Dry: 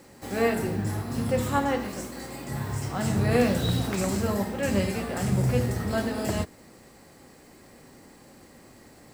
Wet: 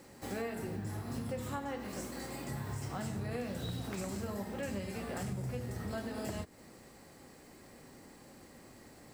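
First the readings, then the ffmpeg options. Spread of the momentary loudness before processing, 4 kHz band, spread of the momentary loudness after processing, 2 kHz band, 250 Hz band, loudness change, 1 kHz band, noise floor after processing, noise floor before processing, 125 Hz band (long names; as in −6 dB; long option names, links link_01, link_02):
10 LU, −12.0 dB, 17 LU, −12.5 dB, −12.5 dB, −12.5 dB, −12.5 dB, −57 dBFS, −52 dBFS, −12.5 dB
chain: -af "acompressor=threshold=-32dB:ratio=6,volume=-4dB"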